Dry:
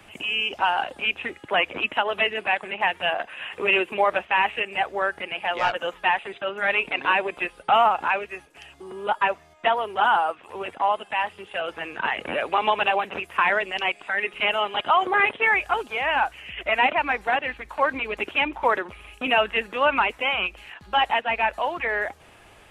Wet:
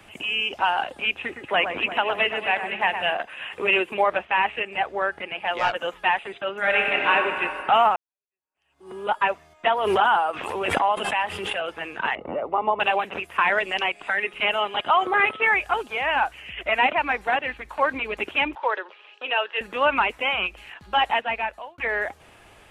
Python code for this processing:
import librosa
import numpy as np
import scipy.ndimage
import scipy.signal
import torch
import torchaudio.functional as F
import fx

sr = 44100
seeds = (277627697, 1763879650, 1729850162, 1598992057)

y = fx.echo_alternate(x, sr, ms=116, hz=2000.0, feedback_pct=71, wet_db=-7.5, at=(1.2, 3.17))
y = fx.lowpass(y, sr, hz=4000.0, slope=6, at=(4.03, 5.47))
y = fx.reverb_throw(y, sr, start_s=6.59, length_s=0.52, rt60_s=2.9, drr_db=-0.5)
y = fx.pre_swell(y, sr, db_per_s=31.0, at=(9.66, 11.53), fade=0.02)
y = fx.savgol(y, sr, points=65, at=(12.15, 12.8))
y = fx.band_squash(y, sr, depth_pct=100, at=(13.58, 14.18))
y = fx.dmg_tone(y, sr, hz=1300.0, level_db=-37.0, at=(14.97, 15.52), fade=0.02)
y = fx.cabinet(y, sr, low_hz=460.0, low_slope=24, high_hz=4700.0, hz=(690.0, 1200.0, 2200.0), db=(-7, -5, -8), at=(18.55, 19.61))
y = fx.edit(y, sr, fx.fade_in_span(start_s=7.96, length_s=0.95, curve='exp'),
    fx.fade_out_span(start_s=21.2, length_s=0.58), tone=tone)